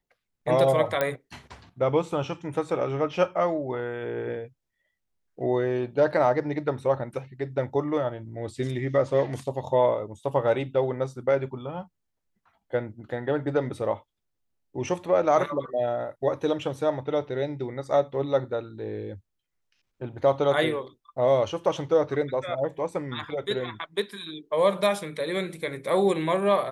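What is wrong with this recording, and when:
1.01 pop -11 dBFS

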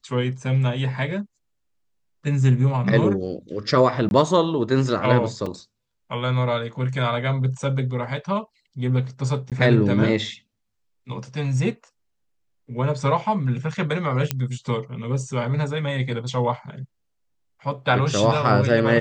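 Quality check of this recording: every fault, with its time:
4.09–4.11 gap 21 ms
5.46 gap 3.5 ms
9.5–9.52 gap 17 ms
14.31 pop -6 dBFS

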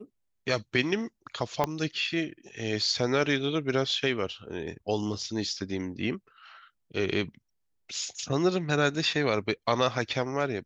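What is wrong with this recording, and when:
1.64 pop -12 dBFS

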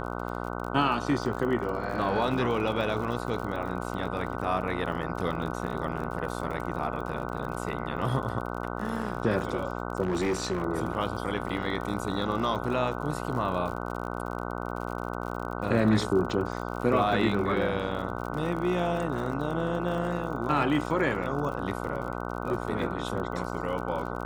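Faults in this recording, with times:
buzz 60 Hz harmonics 25 -34 dBFS
crackle 46/s -35 dBFS
10.02–10.63 clipped -23.5 dBFS

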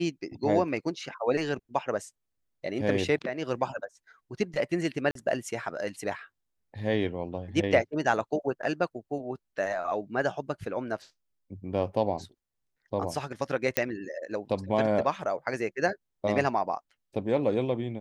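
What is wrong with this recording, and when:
5.11–5.15 gap 43 ms
13.77 pop -7 dBFS

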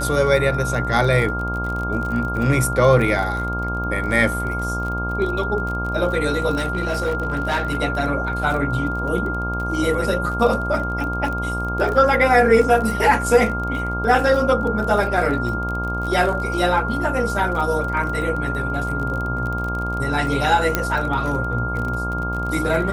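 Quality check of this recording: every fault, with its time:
buzz 60 Hz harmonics 24 -26 dBFS
crackle 31/s -26 dBFS
tone 1400 Hz -25 dBFS
6.56–7.77 clipped -16.5 dBFS
20.75 pop -3 dBFS

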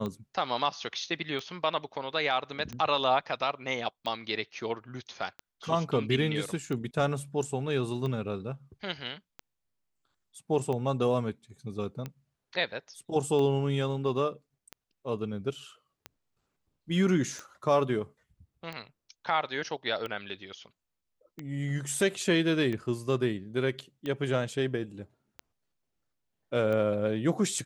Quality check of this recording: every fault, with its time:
tick 45 rpm -23 dBFS

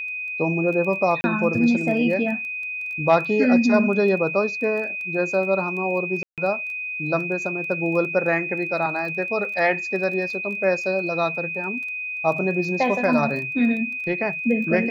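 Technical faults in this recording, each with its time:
crackle 13/s -31 dBFS
tone 2500 Hz -27 dBFS
1.21–1.24 gap 30 ms
6.23–6.38 gap 0.147 s

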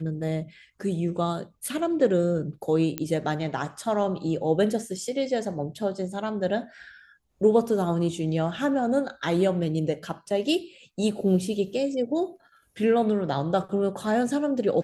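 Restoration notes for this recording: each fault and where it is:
2.98 pop -12 dBFS

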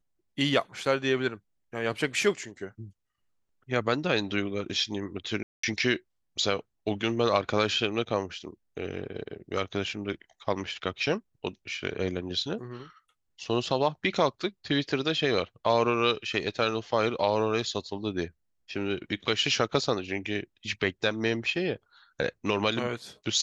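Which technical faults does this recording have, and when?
5.43–5.63 gap 0.204 s

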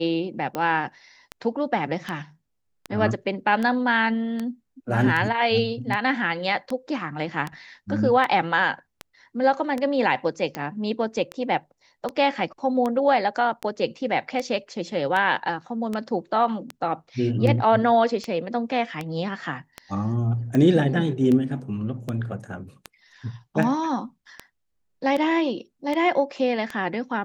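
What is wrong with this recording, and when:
tick 78 rpm -15 dBFS

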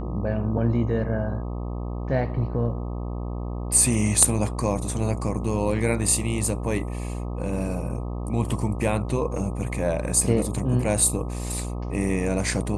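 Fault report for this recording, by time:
buzz 60 Hz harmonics 21 -30 dBFS

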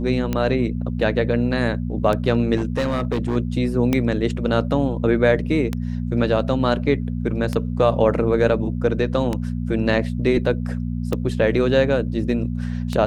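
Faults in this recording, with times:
hum 60 Hz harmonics 4 -25 dBFS
tick 33 1/3 rpm -10 dBFS
2.56–3.37 clipped -17 dBFS
3.93 pop

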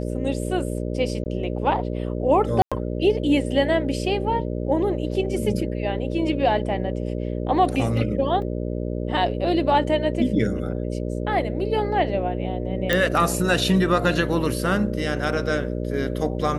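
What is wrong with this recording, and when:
buzz 60 Hz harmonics 10 -27 dBFS
1.24–1.26 gap 19 ms
2.62–2.72 gap 96 ms
8.42 gap 2 ms
12.93 pop -6 dBFS

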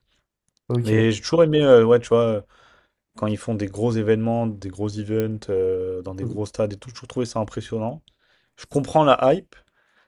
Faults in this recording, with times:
5.2 pop -12 dBFS

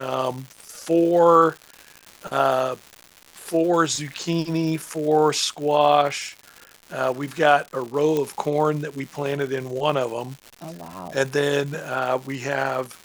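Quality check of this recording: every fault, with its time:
crackle 270/s -31 dBFS
8.17 pop -12 dBFS

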